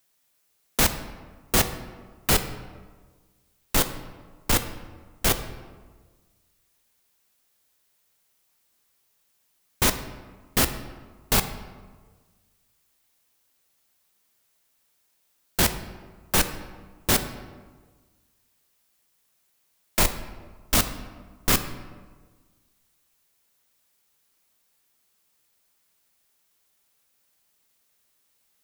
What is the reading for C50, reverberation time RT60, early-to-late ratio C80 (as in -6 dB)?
11.0 dB, 1.5 s, 12.5 dB